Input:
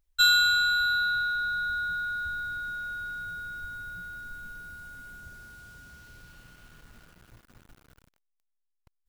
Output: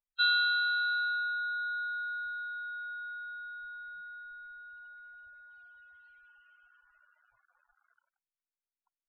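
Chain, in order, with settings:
three-way crossover with the lows and the highs turned down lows −24 dB, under 560 Hz, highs −22 dB, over 4,600 Hz
spectral peaks only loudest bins 16
level −4.5 dB

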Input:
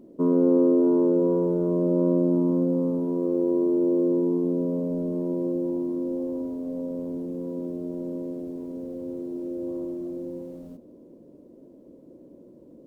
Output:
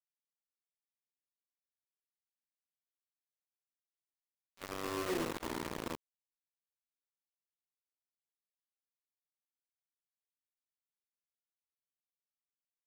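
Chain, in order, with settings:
source passing by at 0:05.15, 30 m/s, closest 1.7 metres
thirty-one-band graphic EQ 125 Hz −10 dB, 200 Hz −7 dB, 400 Hz +12 dB
reversed playback
downward compressor 4 to 1, threshold −47 dBFS, peak gain reduction 20.5 dB
reversed playback
multi-tap delay 51/53/196/217/723 ms −7/−12/−11.5/−18/−7 dB
bit reduction 7 bits
pitch-shifted copies added −12 semitones −15 dB, +5 semitones −15 dB, +12 semitones −17 dB
level +5.5 dB

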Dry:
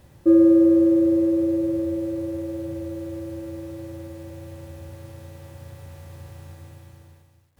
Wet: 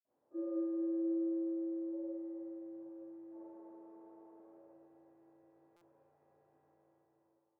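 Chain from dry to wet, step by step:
0:03.26–0:04.49: lower of the sound and its delayed copy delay 2.4 ms
flat-topped band-pass 620 Hz, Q 0.92
notch filter 750 Hz, Q 23
convolution reverb RT60 2.4 s, pre-delay 47 ms
buffer that repeats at 0:05.76, samples 256, times 8
level +1.5 dB

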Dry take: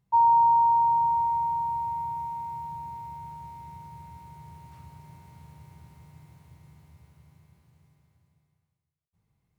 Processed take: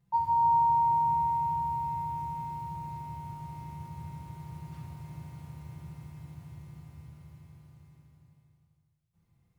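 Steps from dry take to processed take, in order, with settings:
parametric band 86 Hz +3 dB 0.77 octaves
convolution reverb RT60 0.95 s, pre-delay 6 ms, DRR −4 dB
level −3.5 dB

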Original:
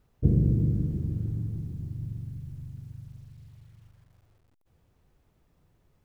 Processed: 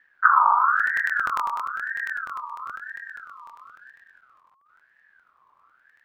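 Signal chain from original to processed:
bass and treble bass +5 dB, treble −13 dB
regular buffer underruns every 0.10 s, samples 1,024, repeat, from 0:00.75
ring modulator whose carrier an LFO sweeps 1,400 Hz, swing 25%, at 1 Hz
level +3 dB

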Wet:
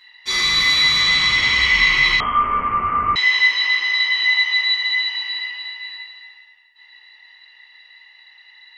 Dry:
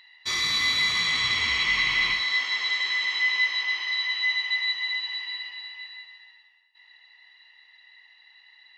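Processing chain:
rectangular room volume 86 cubic metres, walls mixed, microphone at 2.2 metres
0:02.20–0:03.16: voice inversion scrambler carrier 3,200 Hz
level −2 dB

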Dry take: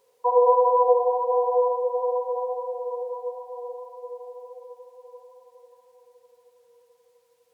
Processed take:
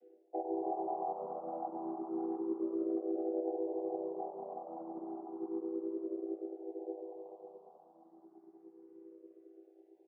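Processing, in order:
channel vocoder with a chord as carrier minor triad, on A3
low-pass filter 1,000 Hz 6 dB per octave
parametric band 700 Hz +5 dB 1.2 octaves
change of speed 0.748×
dynamic equaliser 430 Hz, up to −5 dB, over −29 dBFS, Q 1.4
reversed playback
downward compressor 8 to 1, threshold −34 dBFS, peak gain reduction 18.5 dB
reversed playback
echo with shifted repeats 97 ms, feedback 61%, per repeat +100 Hz, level −17 dB
frequency shifter mixed with the dry sound +0.31 Hz
level +2.5 dB

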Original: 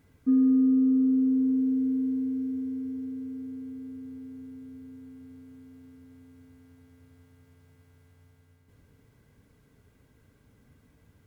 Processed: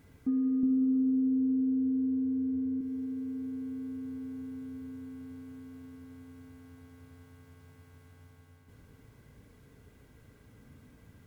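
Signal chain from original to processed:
0:00.63–0:02.81: spectral tilt −2.5 dB per octave
downward compressor 2 to 1, threshold −39 dBFS, peak gain reduction 12.5 dB
convolution reverb RT60 4.9 s, pre-delay 36 ms, DRR 6.5 dB
level +3.5 dB

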